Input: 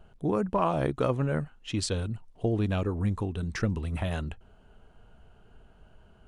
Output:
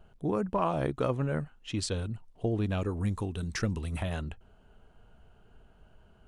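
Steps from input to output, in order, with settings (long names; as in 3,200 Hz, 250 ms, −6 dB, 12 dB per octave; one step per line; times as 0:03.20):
0:02.81–0:04.03: high-shelf EQ 4,000 Hz +9.5 dB
level −2.5 dB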